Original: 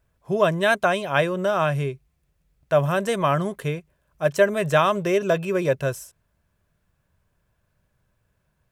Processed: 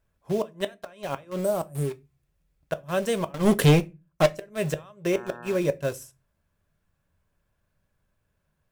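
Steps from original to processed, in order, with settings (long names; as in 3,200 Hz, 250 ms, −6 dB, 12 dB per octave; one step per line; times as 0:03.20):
gate with flip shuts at −11 dBFS, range −25 dB
0:01.39–0:01.91: drawn EQ curve 640 Hz 0 dB, 4,700 Hz −25 dB, 8,100 Hz +13 dB
0:03.34–0:04.27: leveller curve on the samples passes 5
in parallel at −8 dB: bit reduction 5 bits
on the sum: dynamic equaliser 1,400 Hz, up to −5 dB, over −32 dBFS, Q 0.96
0:05.11–0:05.56: hum with harmonics 120 Hz, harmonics 15, −38 dBFS −1 dB per octave
on a send at −11 dB: convolution reverb RT60 0.25 s, pre-delay 3 ms
on the sum: level −4.5 dB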